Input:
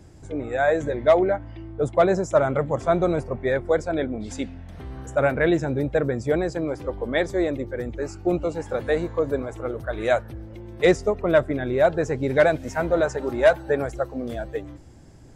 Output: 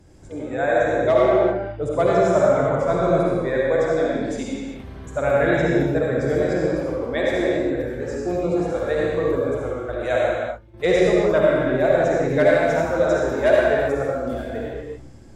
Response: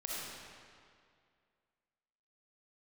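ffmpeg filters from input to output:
-filter_complex "[0:a]asettb=1/sr,asplit=3[a][b][c];[a]atrim=end=9.744[d];[b]atrim=start=9.74:end=10.74,asetpts=PTS-STARTPTS,afade=t=in:d=0.004:c=qsin,afade=t=out:st=0.996:d=0.004:c=qsin,agate=range=-15dB:threshold=-29dB:ratio=16:detection=peak[e];[c]atrim=start=10.736[f];[d][e]acrossfade=d=0.004:c1=hsin:c2=qsin[g];[g][f]acrossfade=d=0.004:c1=qsin:c2=hsin[h];[1:a]atrim=start_sample=2205,afade=t=out:st=0.4:d=0.01,atrim=end_sample=18081,asetrate=38367,aresample=44100[i];[h][i]afir=irnorm=-1:irlink=0"

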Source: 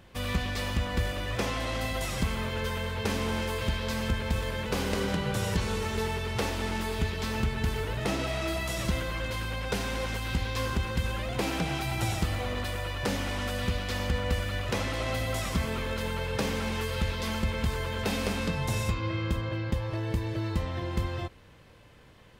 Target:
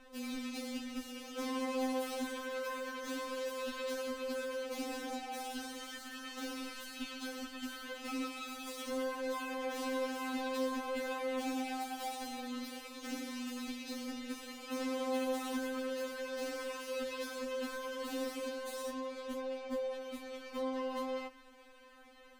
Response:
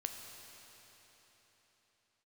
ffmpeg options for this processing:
-filter_complex "[0:a]equalizer=f=74:t=o:w=1.3:g=-13.5,acrossover=split=290[a][b];[b]asoftclip=type=tanh:threshold=-39dB[c];[a][c]amix=inputs=2:normalize=0,afftfilt=real='re*3.46*eq(mod(b,12),0)':imag='im*3.46*eq(mod(b,12),0)':win_size=2048:overlap=0.75"

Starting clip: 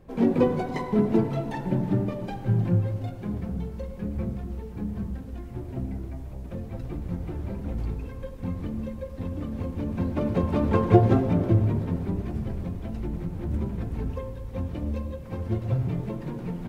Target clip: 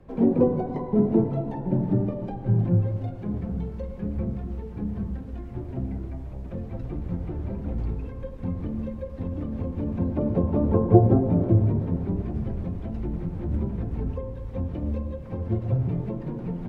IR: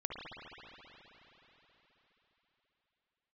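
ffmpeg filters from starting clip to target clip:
-filter_complex "[0:a]lowpass=f=2.7k:p=1,acrossover=split=280|540|850[a][b][c][d];[d]acompressor=threshold=-56dB:ratio=6[e];[a][b][c][e]amix=inputs=4:normalize=0,volume=1.5dB"

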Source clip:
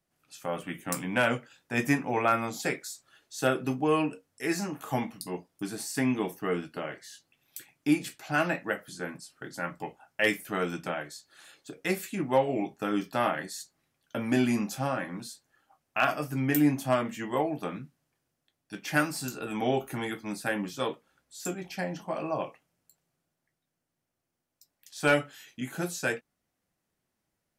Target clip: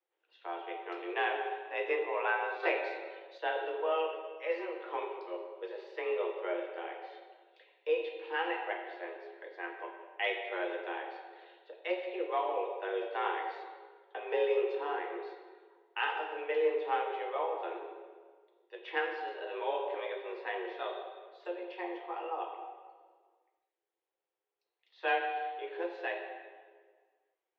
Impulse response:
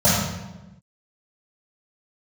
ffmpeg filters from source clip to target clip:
-filter_complex "[0:a]highpass=f=220:t=q:w=0.5412,highpass=f=220:t=q:w=1.307,lowpass=f=3.4k:t=q:w=0.5176,lowpass=f=3.4k:t=q:w=0.7071,lowpass=f=3.4k:t=q:w=1.932,afreqshift=170,asplit=2[a][b];[1:a]atrim=start_sample=2205,asetrate=26019,aresample=44100[c];[b][c]afir=irnorm=-1:irlink=0,volume=-26dB[d];[a][d]amix=inputs=2:normalize=0,asettb=1/sr,asplit=3[e][f][g];[e]atrim=end=2.634[h];[f]atrim=start=2.63:end=3.38,asetpts=PTS-STARTPTS,afade=t=in:d=0.004:c=qsin,afade=t=out:st=0.746:d=0.004:c=qsin,acontrast=57[i];[g]atrim=start=3.376[j];[h][i]acrossfade=d=0.004:c1=hsin:c2=qsin[k];[k][j]acrossfade=d=0.004:c1=qsin:c2=hsin,volume=-8dB"

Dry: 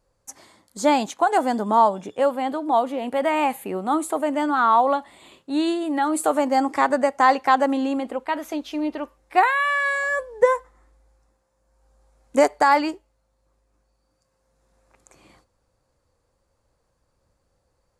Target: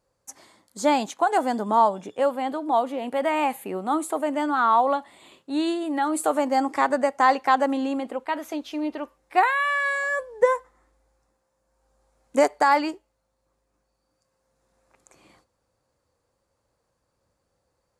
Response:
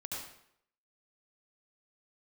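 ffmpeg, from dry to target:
-af "highpass=f=110:p=1,volume=-2dB"

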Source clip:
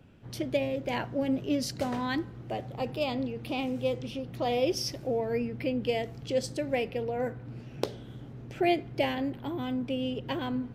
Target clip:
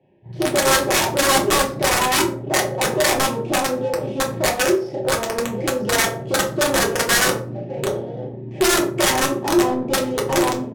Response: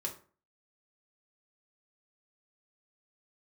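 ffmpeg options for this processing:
-filter_complex "[0:a]asuperstop=centerf=1300:order=12:qfactor=2,aecho=1:1:965:0.1,asettb=1/sr,asplit=3[a][b][c];[a]atrim=end=3.584[d];[b]atrim=start=3.58:end=5.81,asetpts=PTS-STARTPTS,afade=t=in:d=0.004:c=qsin,afade=t=out:st=2.226:d=0.004:c=qsin,acompressor=threshold=-31dB:ratio=8[e];[c]atrim=start=5.806[f];[d][e]acrossfade=d=0.004:c1=hsin:c2=qsin[g];[g][f]acrossfade=d=0.004:c1=qsin:c2=hsin,lowshelf=f=85:g=-3.5,asplit=2[h][i];[i]highpass=f=720:p=1,volume=28dB,asoftclip=type=tanh:threshold=-11.5dB[j];[h][j]amix=inputs=2:normalize=0,lowpass=f=2.5k:p=1,volume=-6dB,afwtdn=0.0708,asplit=2[k][l];[l]adelay=34,volume=-2dB[m];[k][m]amix=inputs=2:normalize=0,adynamicsmooth=sensitivity=7:basefreq=1.5k,aeval=exprs='(mod(4.73*val(0)+1,2)-1)/4.73':c=same,lowpass=9.1k,aemphasis=mode=production:type=50fm[n];[1:a]atrim=start_sample=2205[o];[n][o]afir=irnorm=-1:irlink=0"

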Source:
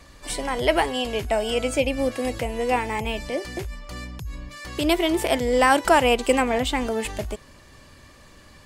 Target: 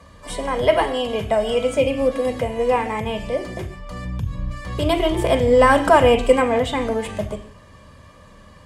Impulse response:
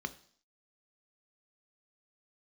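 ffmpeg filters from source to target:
-filter_complex "[0:a]asettb=1/sr,asplit=3[a][b][c];[a]atrim=end=4.044[d];[b]atrim=start=4.04:end=6.28,asetpts=PTS-STARTPTS,afade=t=in:d=0.004:c=qsin,afade=t=out:st=2.236:d=0.004:c=qsin,lowshelf=f=150:g=9.5[e];[c]atrim=start=6.276[f];[d][e]acrossfade=d=0.004:c1=hsin:c2=qsin[g];[g][f]acrossfade=d=0.004:c1=qsin:c2=hsin[h];[1:a]atrim=start_sample=2205,afade=t=out:st=0.14:d=0.01,atrim=end_sample=6615,asetrate=22491,aresample=44100[i];[h][i]afir=irnorm=-1:irlink=0,volume=-3dB"

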